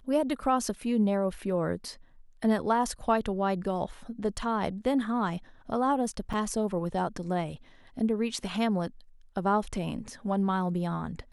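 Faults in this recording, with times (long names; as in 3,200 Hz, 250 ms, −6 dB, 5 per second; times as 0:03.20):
0:06.33–0:06.34: drop-out 5.3 ms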